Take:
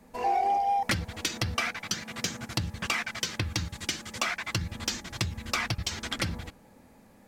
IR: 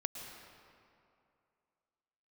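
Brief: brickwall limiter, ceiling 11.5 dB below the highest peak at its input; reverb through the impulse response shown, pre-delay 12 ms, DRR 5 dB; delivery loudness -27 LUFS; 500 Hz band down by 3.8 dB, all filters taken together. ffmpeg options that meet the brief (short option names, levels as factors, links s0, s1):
-filter_complex "[0:a]equalizer=f=500:t=o:g=-5.5,alimiter=level_in=1.58:limit=0.0631:level=0:latency=1,volume=0.631,asplit=2[s0][s1];[1:a]atrim=start_sample=2205,adelay=12[s2];[s1][s2]afir=irnorm=-1:irlink=0,volume=0.531[s3];[s0][s3]amix=inputs=2:normalize=0,volume=2.82"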